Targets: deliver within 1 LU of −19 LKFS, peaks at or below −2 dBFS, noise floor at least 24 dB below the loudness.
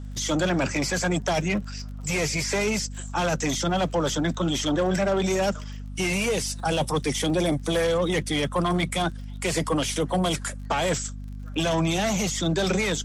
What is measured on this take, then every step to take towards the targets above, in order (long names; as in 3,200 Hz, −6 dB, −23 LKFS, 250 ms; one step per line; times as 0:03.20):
crackle rate 28 per second; mains hum 50 Hz; hum harmonics up to 250 Hz; level of the hum −33 dBFS; integrated loudness −25.5 LKFS; sample peak −12.0 dBFS; target loudness −19.0 LKFS
→ click removal
mains-hum notches 50/100/150/200/250 Hz
level +6.5 dB